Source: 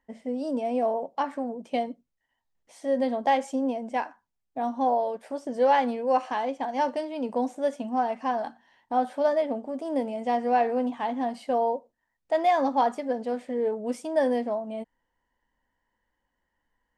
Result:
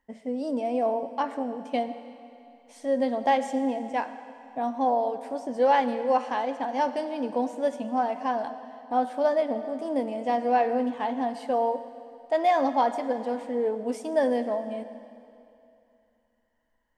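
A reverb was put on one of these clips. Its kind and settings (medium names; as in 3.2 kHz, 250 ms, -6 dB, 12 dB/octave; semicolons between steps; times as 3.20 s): algorithmic reverb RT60 2.7 s, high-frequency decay 0.95×, pre-delay 55 ms, DRR 11.5 dB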